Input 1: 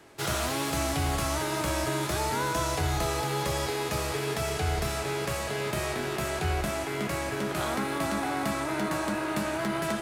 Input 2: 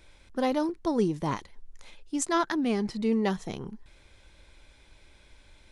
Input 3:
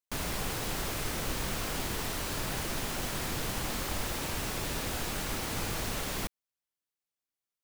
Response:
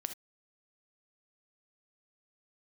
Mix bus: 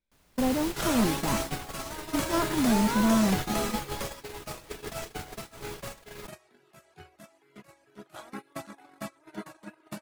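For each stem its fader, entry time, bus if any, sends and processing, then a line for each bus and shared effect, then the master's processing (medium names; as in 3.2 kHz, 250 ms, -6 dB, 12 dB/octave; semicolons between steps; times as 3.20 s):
+1.0 dB, 0.55 s, no send, reverb removal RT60 1.2 s; high-pass 150 Hz 12 dB/octave
-2.5 dB, 0.00 s, no send, de-esser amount 100%; peaking EQ 220 Hz +14.5 dB 0.36 oct; hard clipper -19 dBFS, distortion -6 dB
-0.5 dB, 0.00 s, no send, none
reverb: none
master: gate -28 dBFS, range -30 dB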